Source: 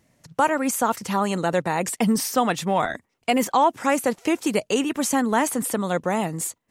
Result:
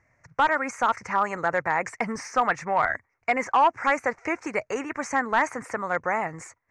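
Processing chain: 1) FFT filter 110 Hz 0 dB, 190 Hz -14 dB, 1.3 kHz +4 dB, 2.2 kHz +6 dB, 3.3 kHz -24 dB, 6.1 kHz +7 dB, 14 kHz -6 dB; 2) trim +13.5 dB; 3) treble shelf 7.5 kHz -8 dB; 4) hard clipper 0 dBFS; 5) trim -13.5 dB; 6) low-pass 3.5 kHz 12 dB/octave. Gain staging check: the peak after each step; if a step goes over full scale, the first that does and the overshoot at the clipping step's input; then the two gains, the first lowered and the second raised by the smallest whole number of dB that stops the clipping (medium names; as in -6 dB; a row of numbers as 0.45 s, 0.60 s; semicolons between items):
-5.5 dBFS, +8.0 dBFS, +7.5 dBFS, 0.0 dBFS, -13.5 dBFS, -13.0 dBFS; step 2, 7.5 dB; step 2 +5.5 dB, step 5 -5.5 dB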